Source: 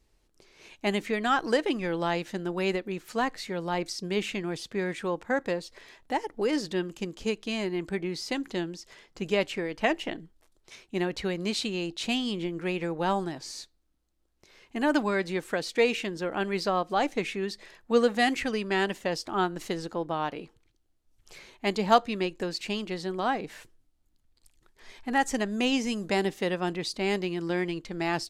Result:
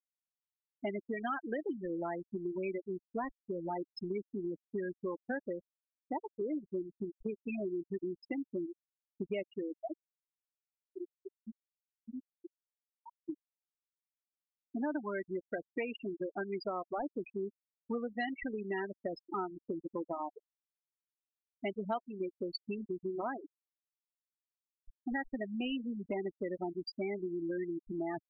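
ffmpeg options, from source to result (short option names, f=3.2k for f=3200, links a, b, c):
-filter_complex "[0:a]asplit=3[a][b][c];[a]atrim=end=9.822[d];[b]atrim=start=9.818:end=13.292,asetpts=PTS-STARTPTS,volume=-11dB[e];[c]atrim=start=13.288[f];[d][e]acrossfade=d=0.004:c1=hsin:c2=hsin[g];[g][f]acrossfade=d=0.004:c1=hsin:c2=hsin,afftfilt=real='re*gte(hypot(re,im),0.126)':imag='im*gte(hypot(re,im),0.126)':win_size=1024:overlap=0.75,aecho=1:1:3.1:0.41,acompressor=threshold=-37dB:ratio=4,volume=1dB"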